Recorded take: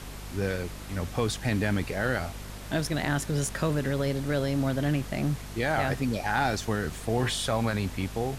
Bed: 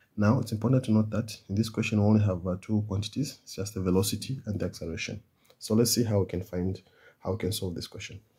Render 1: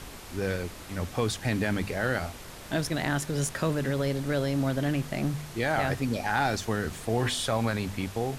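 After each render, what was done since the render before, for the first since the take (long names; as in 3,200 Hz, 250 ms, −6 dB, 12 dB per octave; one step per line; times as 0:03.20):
hum removal 50 Hz, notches 5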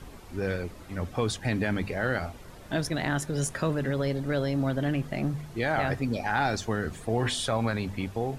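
broadband denoise 10 dB, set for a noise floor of −44 dBFS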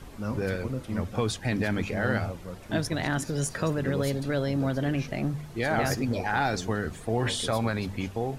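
mix in bed −9 dB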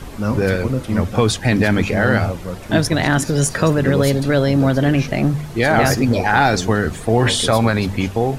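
level +12 dB
brickwall limiter −3 dBFS, peak gain reduction 2 dB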